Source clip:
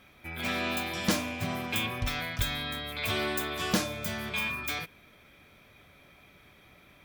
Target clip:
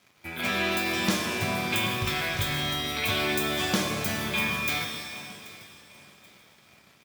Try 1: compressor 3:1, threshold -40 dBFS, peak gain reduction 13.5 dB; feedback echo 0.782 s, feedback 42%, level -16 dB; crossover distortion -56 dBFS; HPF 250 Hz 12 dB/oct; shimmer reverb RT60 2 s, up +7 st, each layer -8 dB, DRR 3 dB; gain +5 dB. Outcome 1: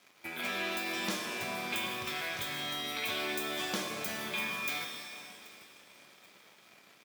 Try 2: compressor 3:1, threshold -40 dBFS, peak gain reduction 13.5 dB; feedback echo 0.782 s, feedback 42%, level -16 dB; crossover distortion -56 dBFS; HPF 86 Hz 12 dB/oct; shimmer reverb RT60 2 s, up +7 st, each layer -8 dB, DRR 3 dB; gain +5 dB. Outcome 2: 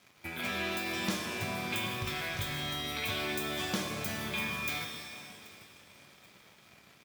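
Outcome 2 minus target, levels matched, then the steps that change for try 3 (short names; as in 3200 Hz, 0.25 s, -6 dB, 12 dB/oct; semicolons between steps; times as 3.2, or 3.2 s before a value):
compressor: peak gain reduction +7.5 dB
change: compressor 3:1, threshold -29 dBFS, peak gain reduction 6.5 dB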